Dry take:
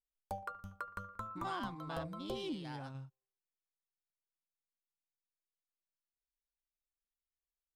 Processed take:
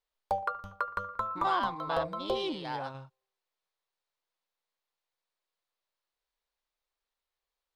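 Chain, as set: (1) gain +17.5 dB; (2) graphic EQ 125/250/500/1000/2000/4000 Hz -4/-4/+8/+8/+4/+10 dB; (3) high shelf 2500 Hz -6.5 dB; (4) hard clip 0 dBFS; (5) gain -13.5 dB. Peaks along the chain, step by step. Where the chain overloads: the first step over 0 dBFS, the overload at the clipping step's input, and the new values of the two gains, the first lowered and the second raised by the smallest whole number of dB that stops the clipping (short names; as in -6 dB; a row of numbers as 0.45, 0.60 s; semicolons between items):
-10.5, -2.5, -3.5, -3.5, -17.0 dBFS; no overload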